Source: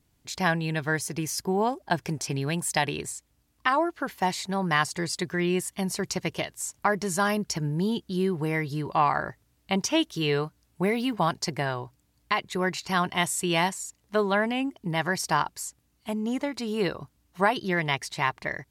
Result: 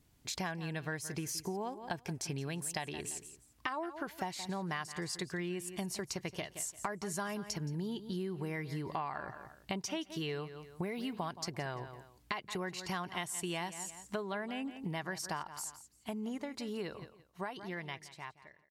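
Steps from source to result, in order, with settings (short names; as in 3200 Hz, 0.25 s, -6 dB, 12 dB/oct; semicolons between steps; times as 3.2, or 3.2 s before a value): ending faded out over 4.72 s; feedback echo 0.171 s, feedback 22%, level -16.5 dB; compressor 6:1, threshold -36 dBFS, peak gain reduction 17 dB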